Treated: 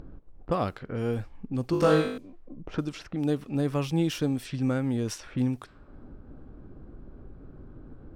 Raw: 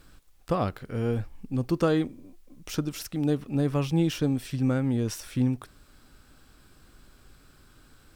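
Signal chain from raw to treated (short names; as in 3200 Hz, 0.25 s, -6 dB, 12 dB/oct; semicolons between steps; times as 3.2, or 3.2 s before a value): 1.71–2.18 flutter echo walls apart 3.4 m, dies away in 0.66 s; low-pass opened by the level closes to 400 Hz, open at -24 dBFS; upward compressor, threshold -27 dBFS; low shelf 180 Hz -4.5 dB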